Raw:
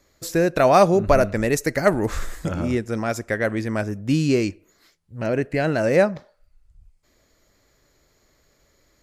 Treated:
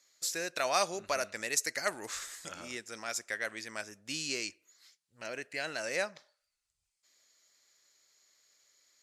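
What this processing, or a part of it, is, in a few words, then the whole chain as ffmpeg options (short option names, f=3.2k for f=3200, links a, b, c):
piezo pickup straight into a mixer: -af "lowpass=7.1k,aderivative,volume=3.5dB"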